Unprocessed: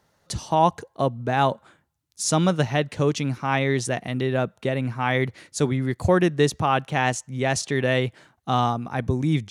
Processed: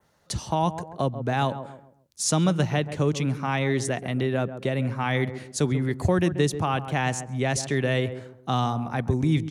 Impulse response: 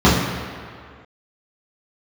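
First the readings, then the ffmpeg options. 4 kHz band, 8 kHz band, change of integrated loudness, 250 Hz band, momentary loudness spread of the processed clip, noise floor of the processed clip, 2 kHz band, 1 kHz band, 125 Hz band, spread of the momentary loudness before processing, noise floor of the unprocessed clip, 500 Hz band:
-2.0 dB, -0.5 dB, -2.5 dB, -1.0 dB, 6 LU, -61 dBFS, -3.5 dB, -4.5 dB, 0.0 dB, 6 LU, -68 dBFS, -3.5 dB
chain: -filter_complex "[0:a]adynamicequalizer=threshold=0.00447:dfrequency=4700:dqfactor=1.4:tfrequency=4700:tqfactor=1.4:attack=5:release=100:ratio=0.375:range=2:mode=cutabove:tftype=bell,asplit=2[a][b];[b]adelay=135,lowpass=f=870:p=1,volume=-11.5dB,asplit=2[c][d];[d]adelay=135,lowpass=f=870:p=1,volume=0.37,asplit=2[e][f];[f]adelay=135,lowpass=f=870:p=1,volume=0.37,asplit=2[g][h];[h]adelay=135,lowpass=f=870:p=1,volume=0.37[i];[a][c][e][g][i]amix=inputs=5:normalize=0,acrossover=split=270|3000[j][k][l];[k]acompressor=threshold=-27dB:ratio=2[m];[j][m][l]amix=inputs=3:normalize=0"

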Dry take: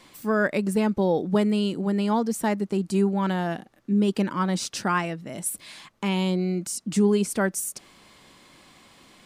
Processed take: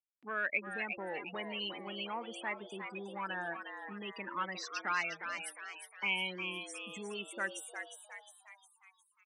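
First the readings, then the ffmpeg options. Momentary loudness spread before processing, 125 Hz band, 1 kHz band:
8 LU, -26.0 dB, -10.5 dB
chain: -filter_complex "[0:a]afftfilt=real='re*gte(hypot(re,im),0.0501)':imag='im*gte(hypot(re,im),0.0501)':win_size=1024:overlap=0.75,equalizer=f=2.3k:w=5.5:g=4,acontrast=75,alimiter=limit=-11dB:level=0:latency=1:release=61,acompressor=mode=upward:threshold=-29dB:ratio=2.5,bandpass=f=2.3k:t=q:w=1.7:csg=0,asplit=7[a][b][c][d][e][f][g];[b]adelay=358,afreqshift=140,volume=-7dB[h];[c]adelay=716,afreqshift=280,volume=-13.4dB[i];[d]adelay=1074,afreqshift=420,volume=-19.8dB[j];[e]adelay=1432,afreqshift=560,volume=-26.1dB[k];[f]adelay=1790,afreqshift=700,volume=-32.5dB[l];[g]adelay=2148,afreqshift=840,volume=-38.9dB[m];[a][h][i][j][k][l][m]amix=inputs=7:normalize=0,volume=-5dB"

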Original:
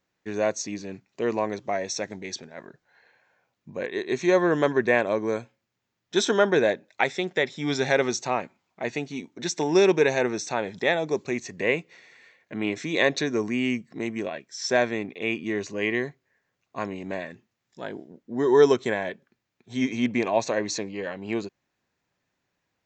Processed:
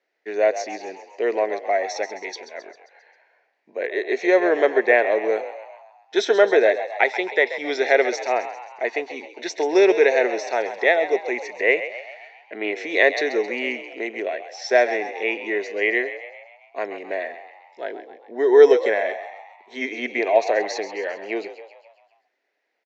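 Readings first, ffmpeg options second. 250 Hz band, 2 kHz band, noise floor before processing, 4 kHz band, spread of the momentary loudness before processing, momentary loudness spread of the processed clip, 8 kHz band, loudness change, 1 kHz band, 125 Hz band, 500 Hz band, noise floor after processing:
-2.0 dB, +6.0 dB, -80 dBFS, 0.0 dB, 15 LU, 17 LU, -5.0 dB, +4.5 dB, +4.5 dB, under -20 dB, +5.5 dB, -65 dBFS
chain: -filter_complex "[0:a]highpass=f=340:w=0.5412,highpass=f=340:w=1.3066,equalizer=f=430:t=q:w=4:g=5,equalizer=f=670:t=q:w=4:g=7,equalizer=f=1.1k:t=q:w=4:g=-8,equalizer=f=2k:t=q:w=4:g=8,equalizer=f=3.5k:t=q:w=4:g=-3,lowpass=f=5.3k:w=0.5412,lowpass=f=5.3k:w=1.3066,asplit=7[a][b][c][d][e][f][g];[b]adelay=133,afreqshift=57,volume=-12dB[h];[c]adelay=266,afreqshift=114,volume=-17.4dB[i];[d]adelay=399,afreqshift=171,volume=-22.7dB[j];[e]adelay=532,afreqshift=228,volume=-28.1dB[k];[f]adelay=665,afreqshift=285,volume=-33.4dB[l];[g]adelay=798,afreqshift=342,volume=-38.8dB[m];[a][h][i][j][k][l][m]amix=inputs=7:normalize=0,volume=1.5dB"

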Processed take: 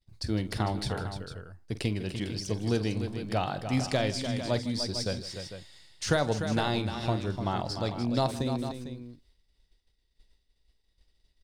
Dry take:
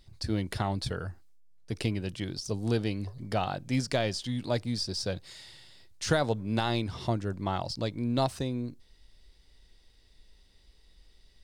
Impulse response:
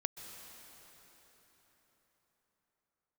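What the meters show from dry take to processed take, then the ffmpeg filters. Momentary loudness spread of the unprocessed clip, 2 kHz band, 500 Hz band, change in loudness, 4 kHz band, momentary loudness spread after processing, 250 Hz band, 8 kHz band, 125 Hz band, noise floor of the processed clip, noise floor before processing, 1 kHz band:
8 LU, +1.0 dB, +1.0 dB, +0.5 dB, +1.0 dB, 12 LU, +1.0 dB, +1.0 dB, +1.0 dB, -73 dBFS, -61 dBFS, +1.0 dB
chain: -filter_complex "[0:a]agate=range=-33dB:threshold=-47dB:ratio=3:detection=peak,asplit=2[a][b];[b]aecho=0:1:47|157|297|451:0.188|0.126|0.355|0.282[c];[a][c]amix=inputs=2:normalize=0"

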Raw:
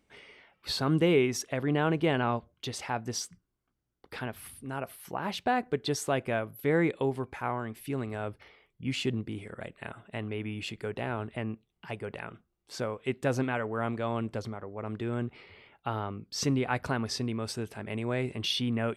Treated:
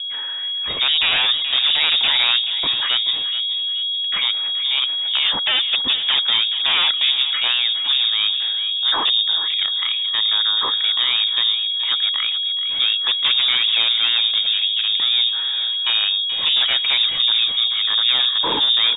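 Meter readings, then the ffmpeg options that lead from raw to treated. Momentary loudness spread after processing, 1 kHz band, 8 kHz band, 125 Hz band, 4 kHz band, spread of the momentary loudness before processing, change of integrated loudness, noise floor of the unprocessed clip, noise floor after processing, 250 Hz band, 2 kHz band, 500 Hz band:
4 LU, +4.5 dB, under -40 dB, under -15 dB, +27.5 dB, 13 LU, +16.0 dB, -79 dBFS, -23 dBFS, under -10 dB, +13.0 dB, -8.0 dB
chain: -filter_complex "[0:a]equalizer=f=75:t=o:w=0.36:g=10,aeval=exprs='val(0)+0.01*sin(2*PI*480*n/s)':c=same,aeval=exprs='0.2*sin(PI/2*3.98*val(0)/0.2)':c=same,asplit=2[a][b];[b]adelay=429,lowpass=f=1.3k:p=1,volume=-8dB,asplit=2[c][d];[d]adelay=429,lowpass=f=1.3k:p=1,volume=0.55,asplit=2[e][f];[f]adelay=429,lowpass=f=1.3k:p=1,volume=0.55,asplit=2[g][h];[h]adelay=429,lowpass=f=1.3k:p=1,volume=0.55,asplit=2[i][j];[j]adelay=429,lowpass=f=1.3k:p=1,volume=0.55,asplit=2[k][l];[l]adelay=429,lowpass=f=1.3k:p=1,volume=0.55,asplit=2[m][n];[n]adelay=429,lowpass=f=1.3k:p=1,volume=0.55[o];[c][e][g][i][k][m][o]amix=inputs=7:normalize=0[p];[a][p]amix=inputs=2:normalize=0,lowpass=f=3.2k:t=q:w=0.5098,lowpass=f=3.2k:t=q:w=0.6013,lowpass=f=3.2k:t=q:w=0.9,lowpass=f=3.2k:t=q:w=2.563,afreqshift=-3800"

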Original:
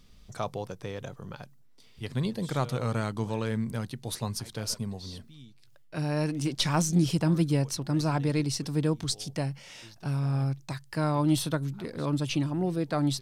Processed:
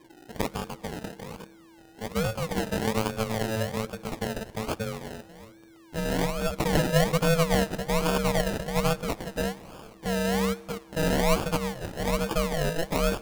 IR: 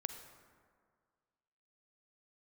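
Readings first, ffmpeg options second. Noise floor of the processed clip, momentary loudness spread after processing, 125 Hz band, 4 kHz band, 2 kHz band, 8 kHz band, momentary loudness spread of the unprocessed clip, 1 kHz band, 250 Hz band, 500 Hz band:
-53 dBFS, 15 LU, -2.5 dB, +1.5 dB, +8.0 dB, +0.5 dB, 15 LU, +5.0 dB, -1.0 dB, +6.5 dB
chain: -filter_complex "[0:a]aeval=exprs='val(0)*sin(2*PI*330*n/s)':c=same,acrusher=samples=31:mix=1:aa=0.000001:lfo=1:lforange=18.6:lforate=1.2,asplit=2[a][b];[1:a]atrim=start_sample=2205,asetrate=28224,aresample=44100[c];[b][c]afir=irnorm=-1:irlink=0,volume=-13.5dB[d];[a][d]amix=inputs=2:normalize=0,volume=3dB"

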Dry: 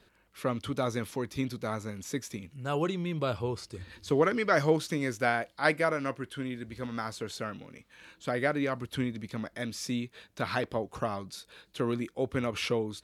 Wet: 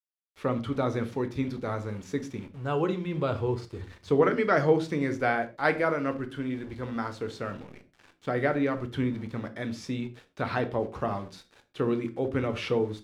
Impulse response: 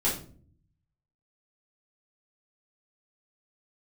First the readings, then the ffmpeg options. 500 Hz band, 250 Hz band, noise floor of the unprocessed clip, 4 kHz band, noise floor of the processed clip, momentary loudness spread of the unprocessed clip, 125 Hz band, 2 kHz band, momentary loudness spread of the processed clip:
+3.0 dB, +3.0 dB, -66 dBFS, -3.5 dB, -68 dBFS, 13 LU, +3.0 dB, +0.5 dB, 12 LU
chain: -filter_complex "[0:a]aeval=exprs='val(0)*gte(abs(val(0)),0.00447)':c=same,aemphasis=mode=reproduction:type=75fm,asplit=2[a][b];[1:a]atrim=start_sample=2205,atrim=end_sample=6174[c];[b][c]afir=irnorm=-1:irlink=0,volume=-15dB[d];[a][d]amix=inputs=2:normalize=0"

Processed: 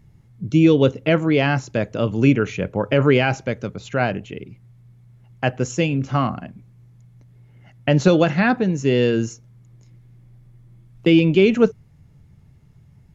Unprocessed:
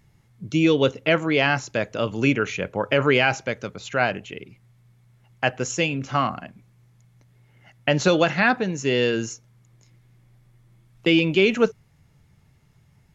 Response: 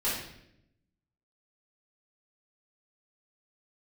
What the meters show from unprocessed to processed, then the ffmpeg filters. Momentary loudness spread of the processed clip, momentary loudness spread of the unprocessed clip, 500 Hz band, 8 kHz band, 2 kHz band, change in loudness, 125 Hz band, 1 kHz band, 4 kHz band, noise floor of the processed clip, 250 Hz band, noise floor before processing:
12 LU, 10 LU, +3.0 dB, n/a, -2.0 dB, +3.0 dB, +7.5 dB, 0.0 dB, -2.5 dB, -51 dBFS, +5.5 dB, -59 dBFS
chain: -af "lowshelf=f=490:g=11.5,volume=-3dB"

